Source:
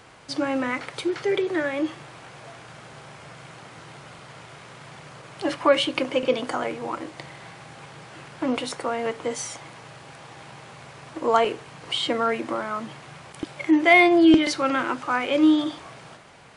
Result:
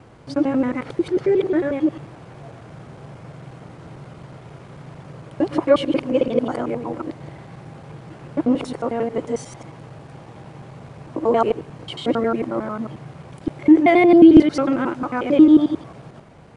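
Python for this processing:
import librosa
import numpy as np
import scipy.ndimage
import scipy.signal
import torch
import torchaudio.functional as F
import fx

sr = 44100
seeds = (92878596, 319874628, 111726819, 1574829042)

y = fx.local_reverse(x, sr, ms=90.0)
y = fx.tilt_shelf(y, sr, db=9.0, hz=770.0)
y = y * librosa.db_to_amplitude(1.0)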